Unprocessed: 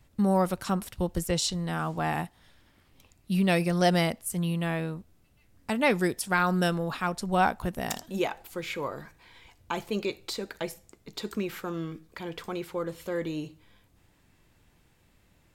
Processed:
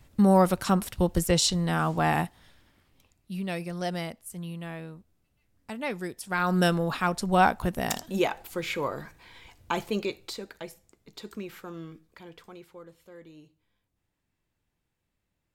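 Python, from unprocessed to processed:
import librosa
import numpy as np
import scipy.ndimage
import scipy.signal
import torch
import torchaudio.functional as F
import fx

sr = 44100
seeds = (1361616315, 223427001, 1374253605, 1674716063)

y = fx.gain(x, sr, db=fx.line((2.24, 4.5), (3.31, -8.5), (6.16, -8.5), (6.6, 3.0), (9.79, 3.0), (10.64, -6.5), (11.9, -6.5), (13.07, -17.0)))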